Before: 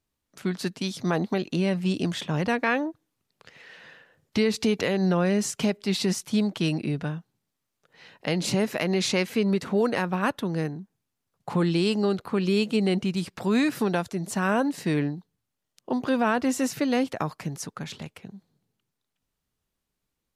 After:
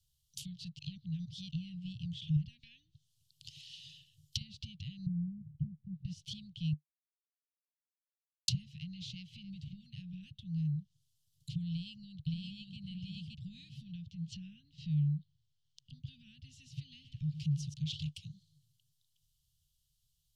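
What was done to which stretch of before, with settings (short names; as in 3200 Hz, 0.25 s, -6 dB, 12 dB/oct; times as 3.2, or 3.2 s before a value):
0.79–1.51 reverse
2.36–4.41 compressor 3:1, threshold -33 dBFS
5.06–6.05 synth low-pass 190 Hz, resonance Q 2
6.73–8.48 mute
9.16–9.58 echo throw 0.27 s, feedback 30%, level -15.5 dB
11.69–12.77 echo throw 0.57 s, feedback 15%, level 0 dB
13.84–15.9 air absorption 130 m
16.8–17.74 lo-fi delay 0.114 s, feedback 35%, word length 8-bit, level -12 dB
whole clip: compressor 2:1, threshold -30 dBFS; treble ducked by the level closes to 1400 Hz, closed at -29.5 dBFS; Chebyshev band-stop 150–3000 Hz, order 5; gain +6 dB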